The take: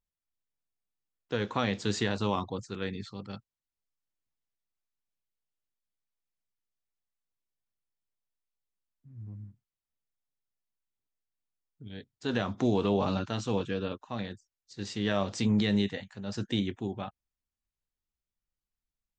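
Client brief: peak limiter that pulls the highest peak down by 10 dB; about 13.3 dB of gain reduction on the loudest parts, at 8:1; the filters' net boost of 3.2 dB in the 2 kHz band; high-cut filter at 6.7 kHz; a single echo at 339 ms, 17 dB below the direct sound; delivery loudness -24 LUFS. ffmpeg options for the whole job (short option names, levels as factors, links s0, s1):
-af "lowpass=6700,equalizer=f=2000:t=o:g=4,acompressor=threshold=0.0158:ratio=8,alimiter=level_in=2.24:limit=0.0631:level=0:latency=1,volume=0.447,aecho=1:1:339:0.141,volume=10"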